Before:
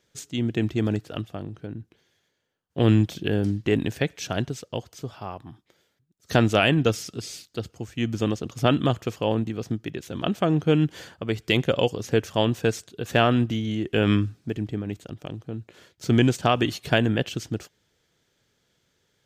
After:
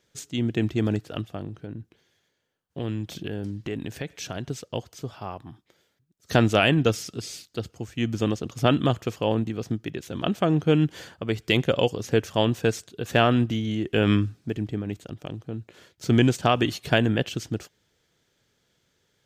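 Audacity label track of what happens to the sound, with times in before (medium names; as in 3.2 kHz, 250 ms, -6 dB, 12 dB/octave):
1.500000	4.500000	compression 2.5:1, threshold -31 dBFS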